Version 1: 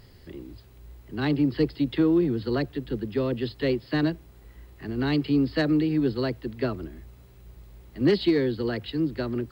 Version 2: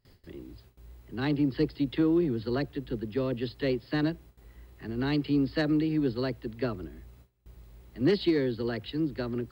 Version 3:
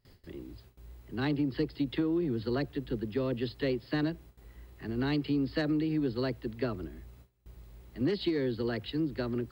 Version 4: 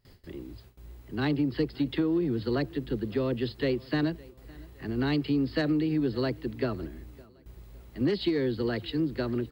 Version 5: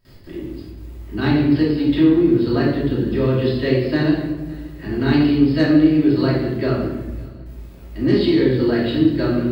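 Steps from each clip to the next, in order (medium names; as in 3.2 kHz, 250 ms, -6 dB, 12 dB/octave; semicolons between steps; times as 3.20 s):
gate with hold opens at -41 dBFS; trim -3.5 dB
compression, threshold -26 dBFS, peak gain reduction 7 dB
feedback delay 561 ms, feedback 37%, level -23.5 dB; trim +3 dB
simulated room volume 530 m³, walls mixed, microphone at 2.8 m; trim +2.5 dB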